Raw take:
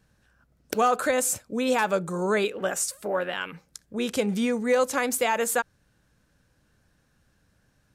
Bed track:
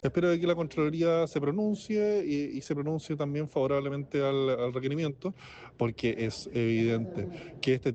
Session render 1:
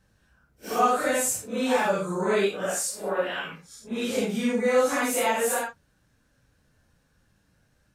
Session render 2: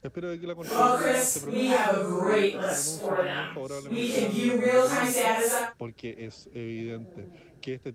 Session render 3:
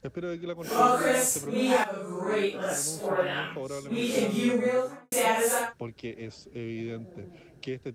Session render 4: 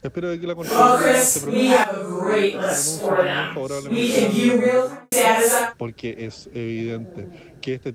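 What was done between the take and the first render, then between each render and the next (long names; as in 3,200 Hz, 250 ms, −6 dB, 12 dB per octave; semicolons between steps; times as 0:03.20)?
random phases in long frames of 200 ms
mix in bed track −8.5 dB
0:00.88–0:01.30: one scale factor per block 7 bits; 0:01.84–0:03.42: fade in equal-power, from −12.5 dB; 0:04.47–0:05.12: fade out and dull
level +8.5 dB; brickwall limiter −2 dBFS, peak gain reduction 1 dB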